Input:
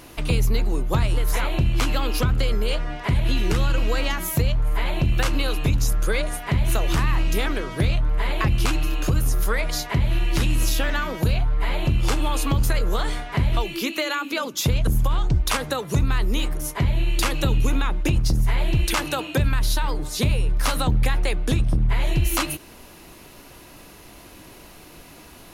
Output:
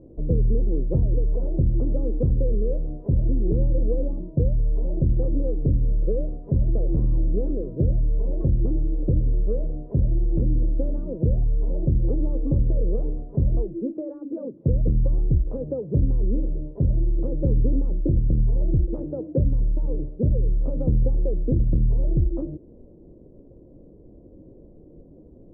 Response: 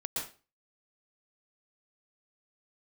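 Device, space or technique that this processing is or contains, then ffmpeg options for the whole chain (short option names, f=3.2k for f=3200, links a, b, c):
under water: -filter_complex "[0:a]asettb=1/sr,asplit=3[a][b][c];[a]atrim=end=3.364[d];[b]atrim=start=3.36:end=5.12,asetpts=PTS-STARTPTS,afade=t=in:d=0.004:c=qsin,afade=t=out:st=1.756:d=0.004:c=qsin,lowpass=f=1.1k:w=0.5412,lowpass=f=1.1k:w=1.3066[e];[c]atrim=start=5.116[f];[d][e]acrossfade=d=0.004:c1=hsin:c2=qsin[g];[g][f]acrossfade=d=0.004:c1=qsin:c2=hsin,lowpass=f=420:w=0.5412,lowpass=f=420:w=1.3066,equalizer=f=530:t=o:w=0.42:g=10"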